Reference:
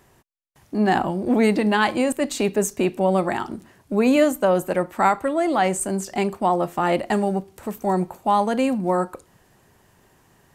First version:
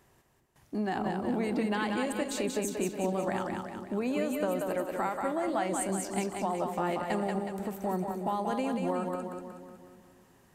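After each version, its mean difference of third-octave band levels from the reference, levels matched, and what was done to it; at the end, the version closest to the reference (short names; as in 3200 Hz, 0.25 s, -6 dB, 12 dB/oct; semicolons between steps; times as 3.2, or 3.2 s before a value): 7.0 dB: compressor, threshold -21 dBFS, peak gain reduction 9 dB; split-band echo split 420 Hz, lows 0.241 s, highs 0.184 s, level -4 dB; gain -7.5 dB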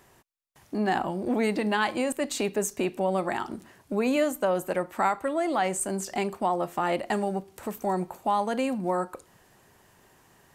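2.0 dB: low shelf 300 Hz -5.5 dB; compressor 1.5:1, threshold -31 dBFS, peak gain reduction 6.5 dB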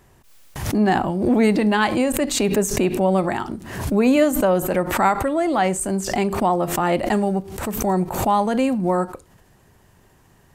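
4.5 dB: low shelf 110 Hz +9 dB; backwards sustainer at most 65 dB/s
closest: second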